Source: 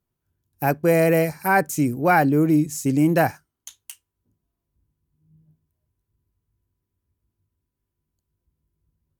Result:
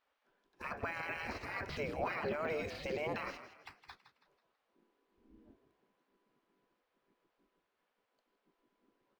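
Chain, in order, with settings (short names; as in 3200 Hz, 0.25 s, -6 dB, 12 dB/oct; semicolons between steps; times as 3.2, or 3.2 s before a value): spectral gate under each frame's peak -20 dB weak; 1.16–1.9 low shelf 350 Hz +6.5 dB; limiter -40.5 dBFS, peak gain reduction 24.5 dB; air absorption 260 m; frequency-shifting echo 0.163 s, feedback 38%, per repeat +53 Hz, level -12 dB; decimation joined by straight lines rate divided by 2×; gain +14.5 dB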